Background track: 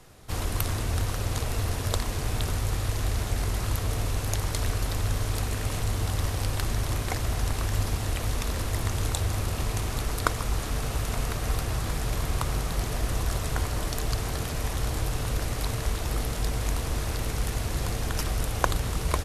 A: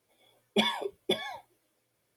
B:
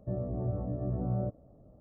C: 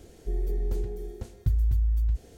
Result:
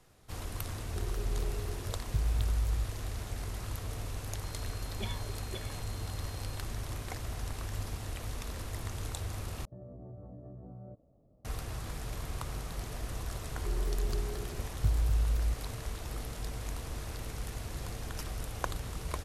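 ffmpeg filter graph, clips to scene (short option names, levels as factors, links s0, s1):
-filter_complex "[3:a]asplit=2[s0][s1];[0:a]volume=0.299[s2];[1:a]aeval=exprs='val(0)+0.0112*sin(2*PI*4200*n/s)':c=same[s3];[2:a]acompressor=threshold=0.0178:ratio=6:attack=3.2:release=140:knee=1:detection=peak[s4];[s1]agate=range=0.0224:threshold=0.00355:ratio=3:release=100:detection=peak[s5];[s2]asplit=2[s6][s7];[s6]atrim=end=9.654[s8];[s4]atrim=end=1.8,asetpts=PTS-STARTPTS,volume=0.376[s9];[s7]atrim=start=11.446[s10];[s0]atrim=end=2.37,asetpts=PTS-STARTPTS,volume=0.473,afade=t=in:d=0.004:c=hsin,afade=t=out:st=2.366:d=0.004:c=hsin,adelay=680[s11];[s3]atrim=end=2.16,asetpts=PTS-STARTPTS,volume=0.168,afade=t=in:d=0.004:c=hsin,afade=t=out:st=2.156:d=0.004:c=hsin,adelay=4440[s12];[s5]atrim=end=2.37,asetpts=PTS-STARTPTS,volume=0.596,afade=t=in:d=0.004:c=hsin,afade=t=out:st=2.366:d=0.004:c=hsin,adelay=13380[s13];[s8][s9]acrossfade=d=0.004:c1=hsin:c2=hsin[s14];[s14][s10]acrossfade=d=0.004:c1=hsin:c2=hsin[s15];[s15][s11][s12][s13]amix=inputs=4:normalize=0"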